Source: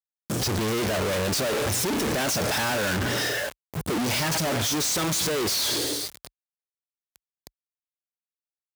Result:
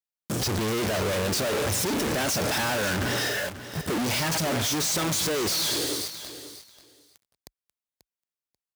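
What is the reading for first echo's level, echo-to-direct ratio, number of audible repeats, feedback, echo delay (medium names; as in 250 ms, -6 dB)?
-13.0 dB, -13.0 dB, 2, 17%, 538 ms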